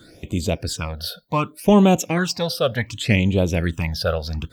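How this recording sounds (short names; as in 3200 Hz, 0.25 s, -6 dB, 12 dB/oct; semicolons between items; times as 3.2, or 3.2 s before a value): phasing stages 8, 0.67 Hz, lowest notch 280–1700 Hz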